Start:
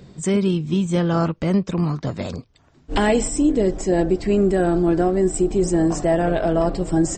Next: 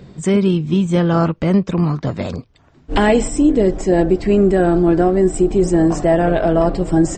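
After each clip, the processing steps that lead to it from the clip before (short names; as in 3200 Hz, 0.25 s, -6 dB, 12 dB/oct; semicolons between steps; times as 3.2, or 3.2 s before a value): tone controls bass 0 dB, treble -6 dB; gain +4.5 dB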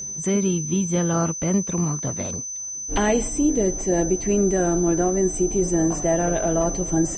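whine 6100 Hz -22 dBFS; gain -7 dB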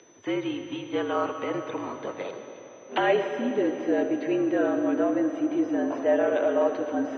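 digital reverb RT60 3.5 s, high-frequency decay 0.9×, pre-delay 40 ms, DRR 7 dB; mistuned SSB -56 Hz 390–3600 Hz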